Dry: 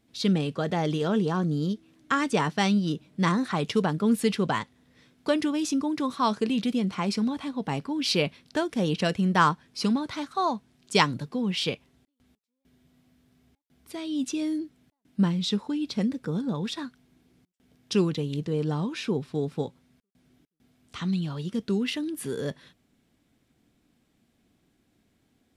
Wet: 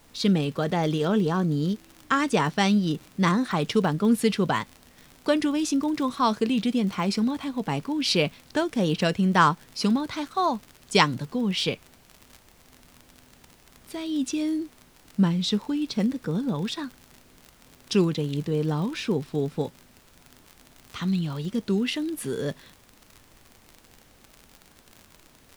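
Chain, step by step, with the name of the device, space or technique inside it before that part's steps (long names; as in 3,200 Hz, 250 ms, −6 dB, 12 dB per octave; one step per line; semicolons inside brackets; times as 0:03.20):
vinyl LP (tape wow and flutter 24 cents; surface crackle 52 per second −35 dBFS; pink noise bed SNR 30 dB)
level +2 dB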